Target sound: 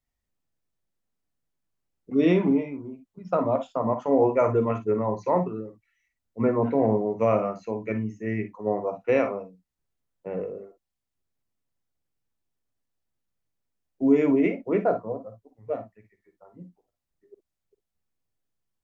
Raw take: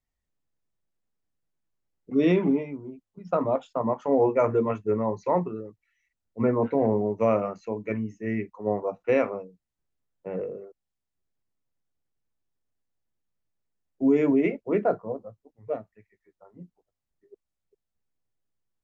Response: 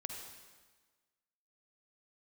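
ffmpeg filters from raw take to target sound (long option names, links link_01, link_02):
-filter_complex "[1:a]atrim=start_sample=2205,atrim=end_sample=3087,asetrate=48510,aresample=44100[link_01];[0:a][link_01]afir=irnorm=-1:irlink=0,volume=5dB"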